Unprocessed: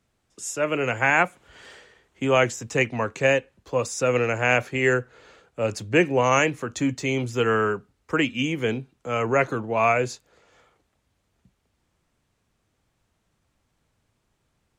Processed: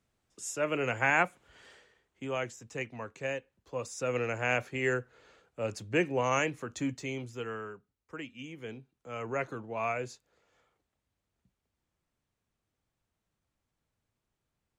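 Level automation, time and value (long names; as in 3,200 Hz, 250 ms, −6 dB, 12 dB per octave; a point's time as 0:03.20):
0:01.21 −6.5 dB
0:02.40 −15 dB
0:03.35 −15 dB
0:04.27 −9 dB
0:06.88 −9 dB
0:07.71 −19.5 dB
0:08.38 −19.5 dB
0:09.36 −12.5 dB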